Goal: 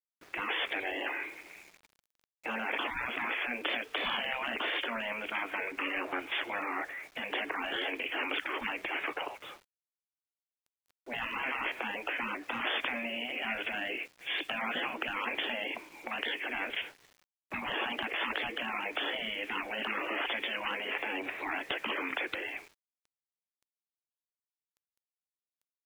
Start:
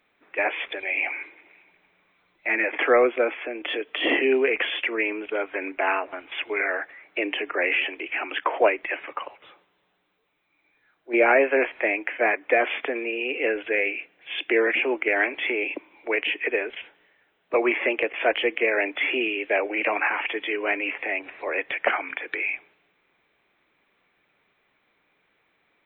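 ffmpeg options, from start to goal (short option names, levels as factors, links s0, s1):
-af "afftfilt=real='re*lt(hypot(re,im),0.0794)':imag='im*lt(hypot(re,im),0.0794)':win_size=1024:overlap=0.75,aeval=exprs='val(0)*gte(abs(val(0)),0.0015)':c=same,volume=1.58"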